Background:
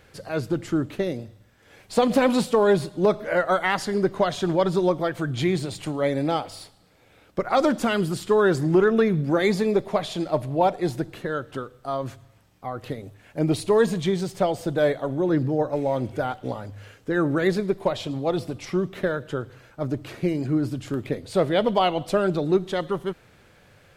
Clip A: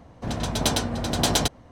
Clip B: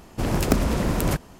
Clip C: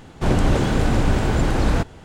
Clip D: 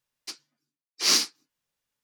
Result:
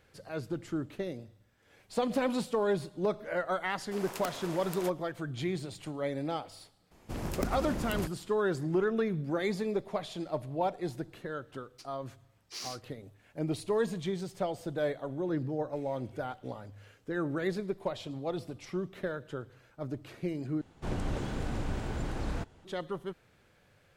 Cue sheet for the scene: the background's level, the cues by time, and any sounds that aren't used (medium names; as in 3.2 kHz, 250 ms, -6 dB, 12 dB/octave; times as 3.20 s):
background -10.5 dB
3.73 s: add B -12.5 dB + high-pass 580 Hz
6.91 s: add B -13 dB
11.51 s: add D -15.5 dB + peak limiter -15.5 dBFS
20.61 s: replace with C -16 dB
not used: A